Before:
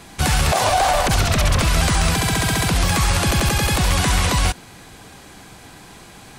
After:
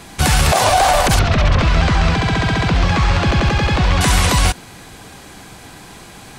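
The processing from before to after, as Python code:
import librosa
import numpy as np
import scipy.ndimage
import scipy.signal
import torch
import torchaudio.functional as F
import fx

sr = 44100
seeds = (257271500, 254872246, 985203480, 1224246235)

y = fx.air_absorb(x, sr, metres=180.0, at=(1.19, 4.01))
y = y * 10.0 ** (4.0 / 20.0)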